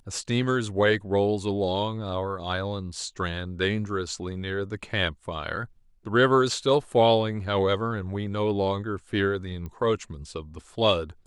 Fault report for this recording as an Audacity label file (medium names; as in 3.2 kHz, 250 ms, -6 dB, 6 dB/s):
9.660000	9.660000	pop -25 dBFS